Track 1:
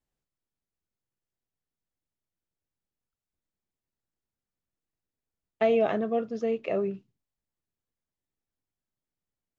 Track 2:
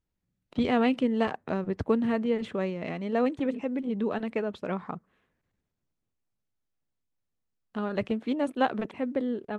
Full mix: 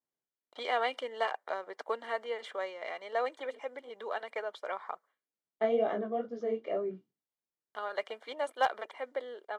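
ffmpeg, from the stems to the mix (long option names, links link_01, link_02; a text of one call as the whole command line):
ffmpeg -i stem1.wav -i stem2.wav -filter_complex "[0:a]highpass=270,flanger=delay=16.5:depth=6.6:speed=2.2,highshelf=frequency=2700:gain=-8,volume=-1dB[link_01];[1:a]highpass=frequency=570:width=0.5412,highpass=frequency=570:width=1.3066,agate=range=-33dB:threshold=-54dB:ratio=3:detection=peak,asoftclip=type=hard:threshold=-18.5dB,volume=-0.5dB[link_02];[link_01][link_02]amix=inputs=2:normalize=0,asuperstop=centerf=2600:order=20:qfactor=7.6" out.wav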